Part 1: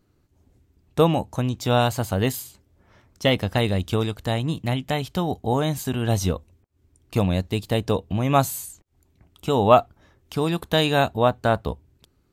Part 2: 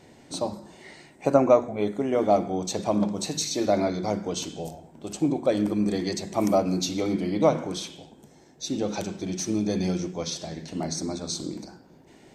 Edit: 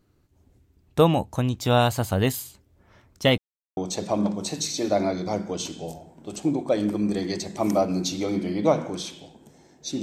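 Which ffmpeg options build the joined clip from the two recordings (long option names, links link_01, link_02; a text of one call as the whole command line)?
ffmpeg -i cue0.wav -i cue1.wav -filter_complex "[0:a]apad=whole_dur=10.02,atrim=end=10.02,asplit=2[link_01][link_02];[link_01]atrim=end=3.38,asetpts=PTS-STARTPTS,afade=type=out:start_time=3.376:duration=0.004:curve=hsin[link_03];[link_02]atrim=start=3.38:end=3.77,asetpts=PTS-STARTPTS,volume=0[link_04];[1:a]atrim=start=2.54:end=8.79,asetpts=PTS-STARTPTS,afade=type=in:duration=0.004:curve=hsin[link_05];[link_03][link_04][link_05]concat=n=3:v=0:a=1" out.wav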